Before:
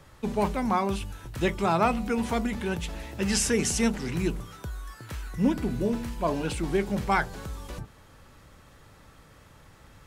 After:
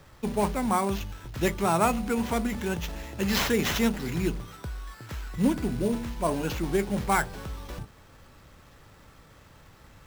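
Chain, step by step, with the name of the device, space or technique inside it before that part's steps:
early companding sampler (sample-rate reduction 9,300 Hz, jitter 0%; log-companded quantiser 6 bits)

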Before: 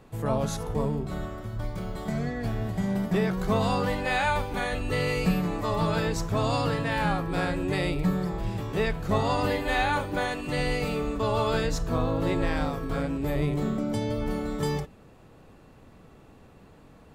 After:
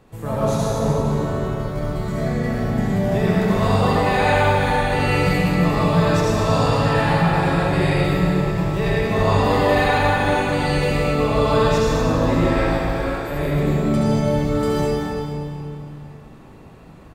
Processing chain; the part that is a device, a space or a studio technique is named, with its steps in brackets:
0:12.63–0:13.32: Bessel high-pass filter 640 Hz
tunnel (flutter between parallel walls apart 7 metres, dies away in 0.22 s; convolution reverb RT60 2.7 s, pre-delay 66 ms, DRR −6.5 dB)
repeating echo 232 ms, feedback 45%, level −9 dB

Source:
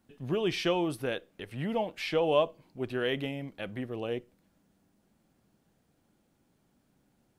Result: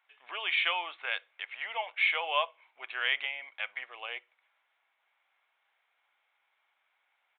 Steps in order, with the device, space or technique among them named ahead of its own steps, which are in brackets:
musical greeting card (downsampling to 8,000 Hz; high-pass filter 900 Hz 24 dB per octave; parametric band 2,200 Hz +11 dB 0.2 octaves)
level +4.5 dB

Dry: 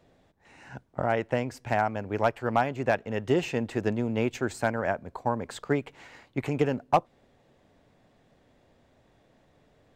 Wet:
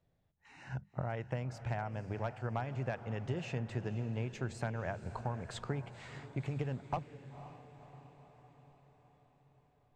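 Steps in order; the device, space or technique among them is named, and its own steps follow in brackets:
jukebox (low-pass filter 7,600 Hz 12 dB per octave; low shelf with overshoot 190 Hz +8.5 dB, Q 1.5; downward compressor 5 to 1, threshold −32 dBFS, peak gain reduction 14.5 dB)
mains-hum notches 50/100/150/200 Hz
noise reduction from a noise print of the clip's start 16 dB
feedback delay with all-pass diffusion 517 ms, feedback 58%, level −13 dB
level −2.5 dB

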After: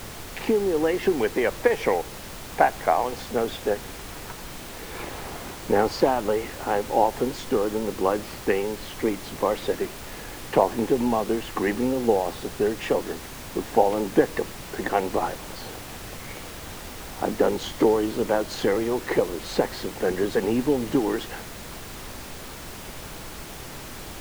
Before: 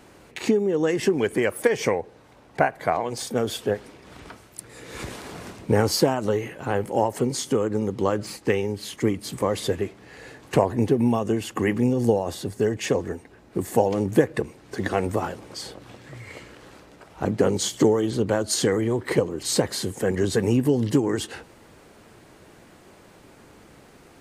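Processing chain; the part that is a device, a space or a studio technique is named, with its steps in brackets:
horn gramophone (band-pass filter 250–3,000 Hz; parametric band 820 Hz +5 dB 0.45 octaves; tape wow and flutter; pink noise bed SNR 12 dB)

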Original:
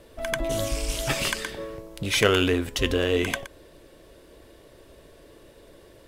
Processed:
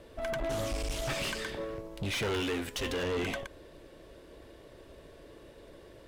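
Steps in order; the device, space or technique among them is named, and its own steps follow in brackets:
0:02.40–0:03.03: spectral tilt +2 dB per octave
tube preamp driven hard (tube saturation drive 29 dB, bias 0.35; high-shelf EQ 6,500 Hz −9 dB)

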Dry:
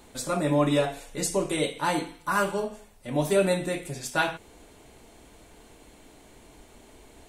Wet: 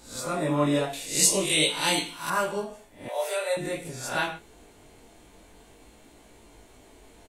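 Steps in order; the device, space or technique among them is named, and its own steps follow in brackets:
peak hold with a rise ahead of every peak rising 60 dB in 0.45 s
double-tracked vocal (double-tracking delay 32 ms −13.5 dB; chorus effect 0.48 Hz, delay 17 ms, depth 5 ms)
0:00.93–0:02.30: high shelf with overshoot 2,000 Hz +10.5 dB, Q 1.5
0:03.08–0:03.57: Butterworth high-pass 470 Hz 48 dB per octave

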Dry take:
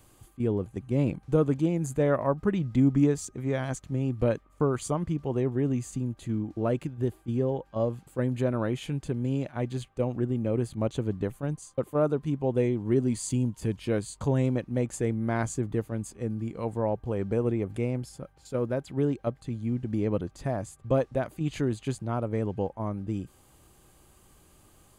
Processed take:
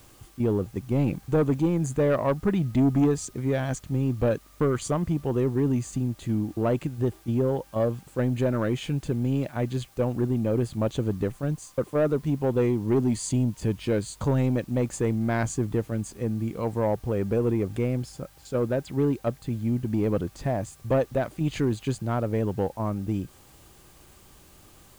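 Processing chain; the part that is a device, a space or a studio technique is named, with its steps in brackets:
compact cassette (soft clipping −20 dBFS, distortion −15 dB; low-pass filter 8,500 Hz; tape wow and flutter 12 cents; white noise bed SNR 32 dB)
level +4.5 dB

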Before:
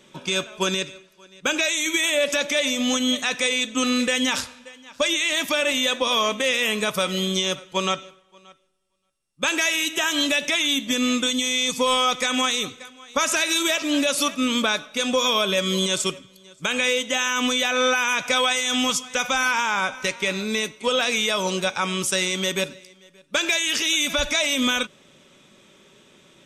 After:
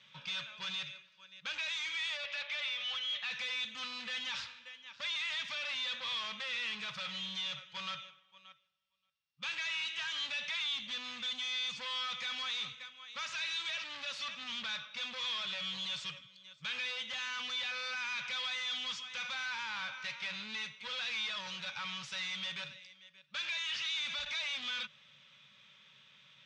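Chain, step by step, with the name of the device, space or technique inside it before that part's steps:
0:02.24–0:03.31: Chebyshev band-pass filter 670–3,100 Hz, order 2
scooped metal amplifier (tube saturation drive 30 dB, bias 0.3; loudspeaker in its box 110–4,300 Hz, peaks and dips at 140 Hz +8 dB, 220 Hz +5 dB, 370 Hz −9 dB, 690 Hz −7 dB; guitar amp tone stack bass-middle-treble 10-0-10)

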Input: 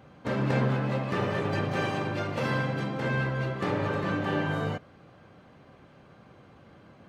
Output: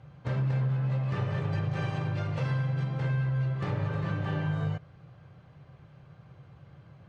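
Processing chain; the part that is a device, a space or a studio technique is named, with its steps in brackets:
jukebox (low-pass filter 7,600 Hz 12 dB per octave; low shelf with overshoot 180 Hz +7.5 dB, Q 3; downward compressor 5 to 1, threshold −21 dBFS, peak gain reduction 8.5 dB)
level −5 dB

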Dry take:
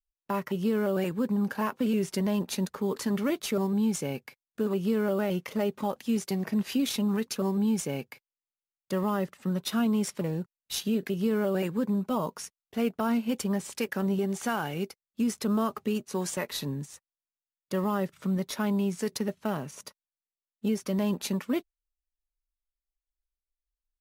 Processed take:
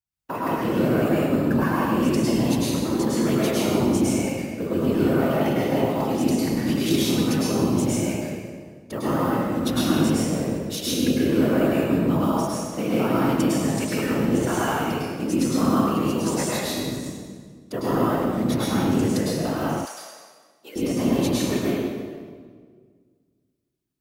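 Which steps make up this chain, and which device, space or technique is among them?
whispering ghost (random phases in short frames; high-pass filter 210 Hz 6 dB per octave; convolution reverb RT60 1.8 s, pre-delay 97 ms, DRR −7 dB)
0:19.85–0:20.76: high-pass filter 830 Hz 12 dB per octave

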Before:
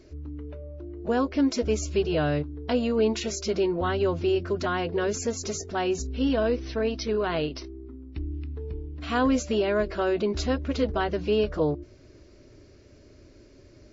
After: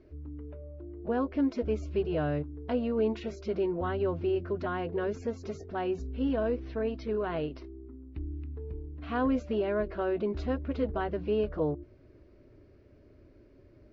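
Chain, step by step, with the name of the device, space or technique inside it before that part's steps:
phone in a pocket (low-pass filter 3,400 Hz 12 dB per octave; high-shelf EQ 2,500 Hz −10 dB)
level −4.5 dB

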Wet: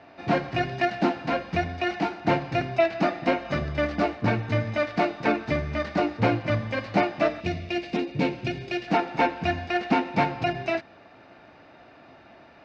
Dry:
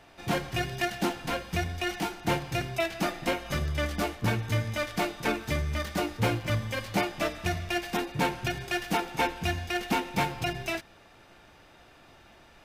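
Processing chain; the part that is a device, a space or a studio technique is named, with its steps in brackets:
0:07.40–0:08.88: flat-topped bell 1,100 Hz −10 dB
guitar cabinet (loudspeaker in its box 100–4,300 Hz, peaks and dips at 270 Hz +6 dB, 650 Hz +6 dB, 3,300 Hz −9 dB)
level +3.5 dB

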